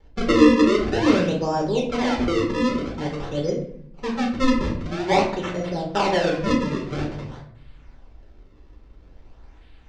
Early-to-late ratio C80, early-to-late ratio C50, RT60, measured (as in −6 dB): 10.0 dB, 6.5 dB, 0.60 s